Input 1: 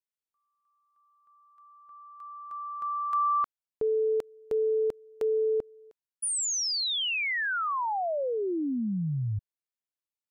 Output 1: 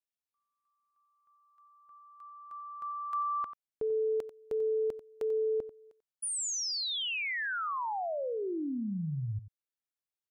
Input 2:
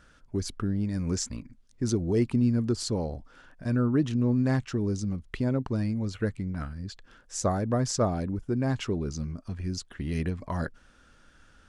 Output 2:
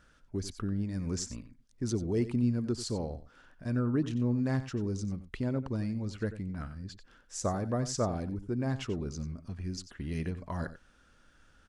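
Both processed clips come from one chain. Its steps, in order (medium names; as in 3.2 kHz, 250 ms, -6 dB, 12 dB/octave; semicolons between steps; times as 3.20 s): delay 91 ms -13.5 dB; trim -5 dB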